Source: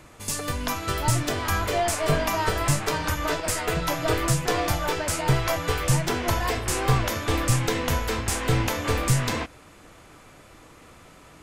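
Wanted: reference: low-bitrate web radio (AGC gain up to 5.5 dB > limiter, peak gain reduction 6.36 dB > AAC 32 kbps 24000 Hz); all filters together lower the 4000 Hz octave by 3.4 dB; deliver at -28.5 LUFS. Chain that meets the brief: bell 4000 Hz -4.5 dB; AGC gain up to 5.5 dB; limiter -17 dBFS; gain -1.5 dB; AAC 32 kbps 24000 Hz

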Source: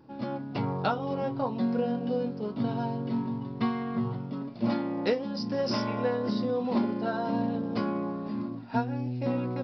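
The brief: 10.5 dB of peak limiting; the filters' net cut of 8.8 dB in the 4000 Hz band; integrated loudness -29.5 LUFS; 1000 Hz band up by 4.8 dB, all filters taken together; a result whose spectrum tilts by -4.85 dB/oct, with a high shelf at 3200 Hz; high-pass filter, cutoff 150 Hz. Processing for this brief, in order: HPF 150 Hz; bell 1000 Hz +7 dB; high shelf 3200 Hz -5.5 dB; bell 4000 Hz -7.5 dB; gain +2.5 dB; limiter -20 dBFS

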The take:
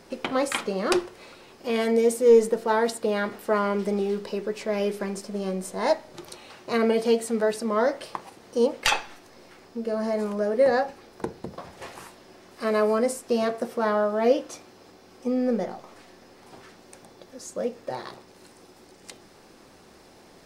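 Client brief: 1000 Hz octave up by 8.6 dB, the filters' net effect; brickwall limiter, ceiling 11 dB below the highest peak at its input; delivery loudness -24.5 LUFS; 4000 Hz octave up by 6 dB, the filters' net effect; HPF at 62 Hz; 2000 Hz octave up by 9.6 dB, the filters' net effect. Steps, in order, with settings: HPF 62 Hz; bell 1000 Hz +8.5 dB; bell 2000 Hz +8.5 dB; bell 4000 Hz +4 dB; gain -1 dB; limiter -11 dBFS

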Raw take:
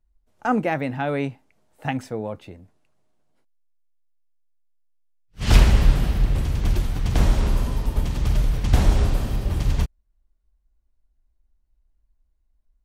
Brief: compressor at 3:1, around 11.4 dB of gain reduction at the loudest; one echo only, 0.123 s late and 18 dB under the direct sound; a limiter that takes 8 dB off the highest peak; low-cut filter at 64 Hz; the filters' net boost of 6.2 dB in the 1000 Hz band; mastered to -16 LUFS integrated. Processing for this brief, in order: HPF 64 Hz; bell 1000 Hz +8.5 dB; compressor 3:1, threshold -28 dBFS; limiter -21.5 dBFS; echo 0.123 s -18 dB; gain +17 dB

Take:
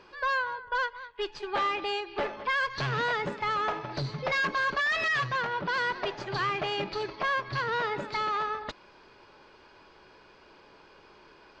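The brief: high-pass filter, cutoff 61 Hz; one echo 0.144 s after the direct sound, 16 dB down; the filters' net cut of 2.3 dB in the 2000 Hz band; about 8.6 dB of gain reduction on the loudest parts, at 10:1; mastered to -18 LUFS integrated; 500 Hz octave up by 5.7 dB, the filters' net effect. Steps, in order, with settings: HPF 61 Hz; bell 500 Hz +7 dB; bell 2000 Hz -3.5 dB; compressor 10:1, threshold -31 dBFS; echo 0.144 s -16 dB; gain +17 dB

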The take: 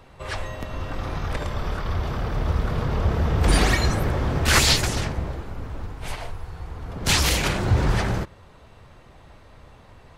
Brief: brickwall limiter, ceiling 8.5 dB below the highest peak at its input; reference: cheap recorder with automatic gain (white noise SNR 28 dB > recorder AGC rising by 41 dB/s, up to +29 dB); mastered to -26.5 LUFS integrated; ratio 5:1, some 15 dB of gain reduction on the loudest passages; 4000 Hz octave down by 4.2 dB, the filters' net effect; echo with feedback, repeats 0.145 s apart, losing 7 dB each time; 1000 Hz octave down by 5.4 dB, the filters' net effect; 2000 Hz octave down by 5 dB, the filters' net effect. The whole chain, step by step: bell 1000 Hz -6 dB; bell 2000 Hz -3.5 dB; bell 4000 Hz -4 dB; compressor 5:1, threshold -31 dBFS; limiter -28 dBFS; feedback echo 0.145 s, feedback 45%, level -7 dB; white noise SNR 28 dB; recorder AGC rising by 41 dB/s, up to +29 dB; gain +11.5 dB

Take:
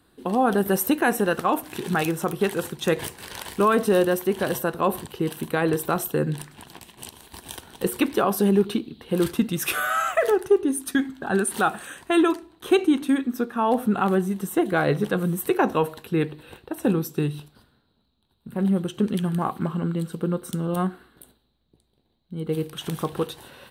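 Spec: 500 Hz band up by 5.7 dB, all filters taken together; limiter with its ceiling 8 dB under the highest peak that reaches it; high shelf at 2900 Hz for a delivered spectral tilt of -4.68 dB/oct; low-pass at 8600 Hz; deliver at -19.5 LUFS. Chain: LPF 8600 Hz; bell 500 Hz +7.5 dB; high shelf 2900 Hz -6.5 dB; gain +4 dB; limiter -7.5 dBFS

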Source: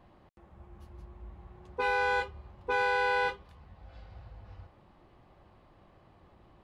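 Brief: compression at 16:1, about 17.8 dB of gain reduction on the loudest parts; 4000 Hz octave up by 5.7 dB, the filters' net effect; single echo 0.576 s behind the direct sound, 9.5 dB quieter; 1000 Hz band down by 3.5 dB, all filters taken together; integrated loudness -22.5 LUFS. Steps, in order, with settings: bell 1000 Hz -4.5 dB; bell 4000 Hz +7 dB; compressor 16:1, threshold -44 dBFS; echo 0.576 s -9.5 dB; gain +28.5 dB

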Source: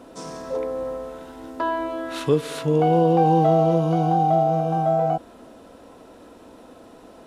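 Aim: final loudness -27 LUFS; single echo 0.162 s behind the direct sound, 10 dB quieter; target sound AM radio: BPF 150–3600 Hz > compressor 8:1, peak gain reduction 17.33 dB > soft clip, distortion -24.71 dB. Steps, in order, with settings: BPF 150–3600 Hz; echo 0.162 s -10 dB; compressor 8:1, threshold -31 dBFS; soft clip -23.5 dBFS; gain +9 dB

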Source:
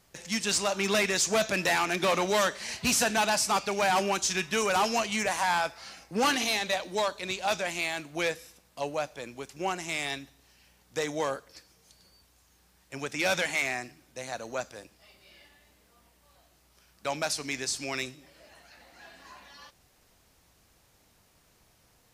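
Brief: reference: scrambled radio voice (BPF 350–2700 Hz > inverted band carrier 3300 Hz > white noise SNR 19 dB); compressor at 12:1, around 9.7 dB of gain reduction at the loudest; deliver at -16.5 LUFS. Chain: compressor 12:1, threshold -32 dBFS; BPF 350–2700 Hz; inverted band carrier 3300 Hz; white noise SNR 19 dB; gain +20.5 dB

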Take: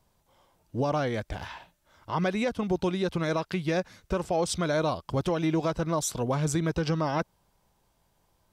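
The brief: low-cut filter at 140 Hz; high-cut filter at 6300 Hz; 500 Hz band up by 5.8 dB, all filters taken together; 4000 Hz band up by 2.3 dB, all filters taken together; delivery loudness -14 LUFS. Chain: HPF 140 Hz; LPF 6300 Hz; bell 500 Hz +7 dB; bell 4000 Hz +3.5 dB; gain +11.5 dB

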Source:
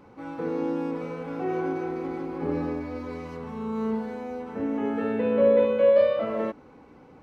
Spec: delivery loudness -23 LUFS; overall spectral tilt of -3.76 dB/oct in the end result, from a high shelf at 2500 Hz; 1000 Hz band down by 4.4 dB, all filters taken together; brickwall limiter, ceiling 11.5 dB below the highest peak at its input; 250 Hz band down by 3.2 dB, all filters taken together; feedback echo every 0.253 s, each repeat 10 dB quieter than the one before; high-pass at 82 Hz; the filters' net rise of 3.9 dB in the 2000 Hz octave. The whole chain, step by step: HPF 82 Hz; bell 250 Hz -3.5 dB; bell 1000 Hz -8 dB; bell 2000 Hz +5.5 dB; high shelf 2500 Hz +4.5 dB; limiter -23.5 dBFS; feedback echo 0.253 s, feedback 32%, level -10 dB; gain +9.5 dB

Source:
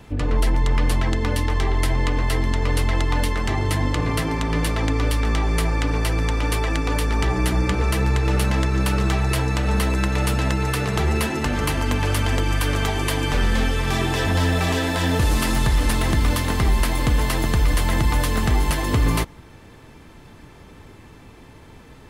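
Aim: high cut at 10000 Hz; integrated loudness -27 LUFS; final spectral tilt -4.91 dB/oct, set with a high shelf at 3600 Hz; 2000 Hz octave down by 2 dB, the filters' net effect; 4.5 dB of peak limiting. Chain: LPF 10000 Hz; bell 2000 Hz -4 dB; high shelf 3600 Hz +5.5 dB; gain -4 dB; limiter -17 dBFS

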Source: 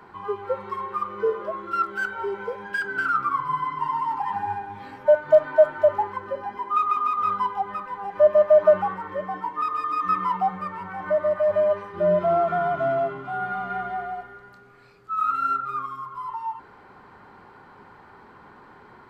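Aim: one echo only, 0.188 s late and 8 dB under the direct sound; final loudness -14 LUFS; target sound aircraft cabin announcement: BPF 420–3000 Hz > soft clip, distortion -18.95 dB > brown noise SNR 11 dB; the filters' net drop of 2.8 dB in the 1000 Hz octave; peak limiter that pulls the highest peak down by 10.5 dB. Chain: bell 1000 Hz -3.5 dB; limiter -17.5 dBFS; BPF 420–3000 Hz; echo 0.188 s -8 dB; soft clip -19.5 dBFS; brown noise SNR 11 dB; gain +15.5 dB

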